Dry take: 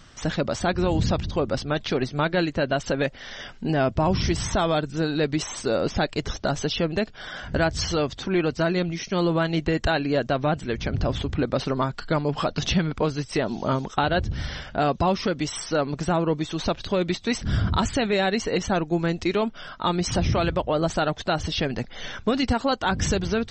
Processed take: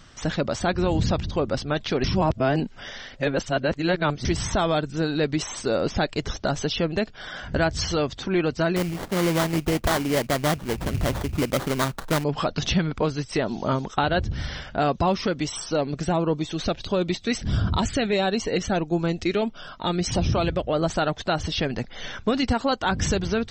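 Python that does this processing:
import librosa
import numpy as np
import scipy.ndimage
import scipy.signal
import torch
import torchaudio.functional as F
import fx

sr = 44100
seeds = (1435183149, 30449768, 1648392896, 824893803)

y = fx.sample_hold(x, sr, seeds[0], rate_hz=2600.0, jitter_pct=20, at=(8.76, 12.24))
y = fx.filter_lfo_notch(y, sr, shape='sine', hz=1.5, low_hz=900.0, high_hz=2100.0, q=2.7, at=(15.47, 20.73))
y = fx.edit(y, sr, fx.reverse_span(start_s=2.04, length_s=2.21), tone=tone)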